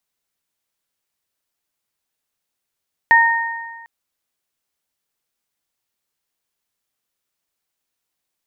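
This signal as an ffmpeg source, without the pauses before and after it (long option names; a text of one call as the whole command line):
ffmpeg -f lavfi -i "aevalsrc='0.282*pow(10,-3*t/1.49)*sin(2*PI*923*t)+0.398*pow(10,-3*t/1.39)*sin(2*PI*1846*t)':duration=0.75:sample_rate=44100" out.wav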